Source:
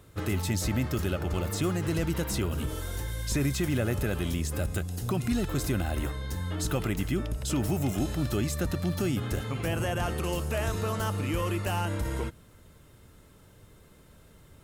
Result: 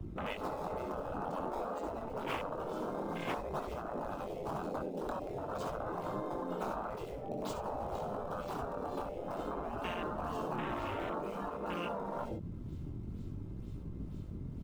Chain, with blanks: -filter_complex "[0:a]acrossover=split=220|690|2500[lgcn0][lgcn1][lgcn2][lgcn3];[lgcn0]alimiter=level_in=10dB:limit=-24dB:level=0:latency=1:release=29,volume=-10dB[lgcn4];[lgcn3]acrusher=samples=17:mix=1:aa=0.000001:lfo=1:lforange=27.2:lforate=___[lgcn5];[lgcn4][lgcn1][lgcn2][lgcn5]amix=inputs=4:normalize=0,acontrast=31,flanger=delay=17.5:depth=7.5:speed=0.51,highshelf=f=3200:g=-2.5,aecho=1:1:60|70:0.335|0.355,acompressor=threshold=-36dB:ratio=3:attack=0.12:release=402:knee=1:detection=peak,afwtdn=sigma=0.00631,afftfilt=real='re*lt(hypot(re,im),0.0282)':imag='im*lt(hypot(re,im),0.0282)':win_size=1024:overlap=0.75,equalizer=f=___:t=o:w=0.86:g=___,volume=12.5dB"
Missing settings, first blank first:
2.1, 1700, -9.5